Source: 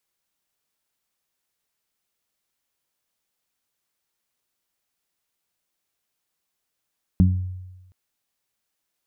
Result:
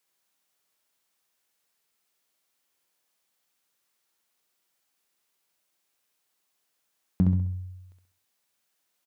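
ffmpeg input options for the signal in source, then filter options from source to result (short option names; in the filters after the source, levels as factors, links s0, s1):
-f lavfi -i "aevalsrc='0.224*pow(10,-3*t/1.12)*sin(2*PI*91.9*t)+0.282*pow(10,-3*t/0.35)*sin(2*PI*183.8*t)+0.0447*pow(10,-3*t/0.38)*sin(2*PI*275.7*t)':d=0.72:s=44100"
-filter_complex "[0:a]asplit=2[s0][s1];[s1]asoftclip=type=hard:threshold=0.0596,volume=0.266[s2];[s0][s2]amix=inputs=2:normalize=0,highpass=f=220:p=1,aecho=1:1:66|132|198|264|330:0.562|0.231|0.0945|0.0388|0.0159"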